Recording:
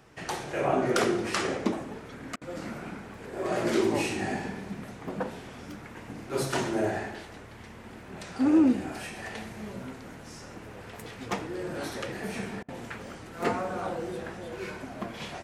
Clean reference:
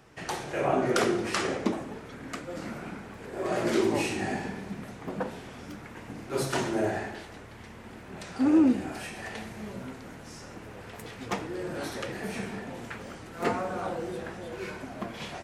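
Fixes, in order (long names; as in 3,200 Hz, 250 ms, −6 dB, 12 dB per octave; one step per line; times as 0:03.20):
clipped peaks rebuilt −13.5 dBFS
repair the gap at 0:02.36/0:12.63, 53 ms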